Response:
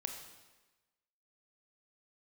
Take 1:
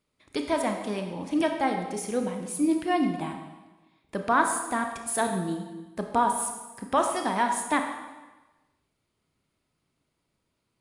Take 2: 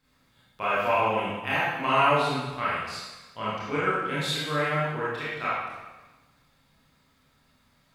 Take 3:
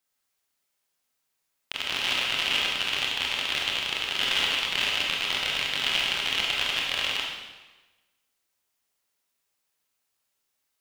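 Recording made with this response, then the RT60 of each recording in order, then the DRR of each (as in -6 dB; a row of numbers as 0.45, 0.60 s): 1; 1.2, 1.2, 1.2 s; 4.0, -10.5, -3.0 dB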